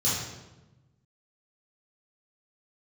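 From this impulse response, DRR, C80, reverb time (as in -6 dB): -9.5 dB, 3.5 dB, 1.1 s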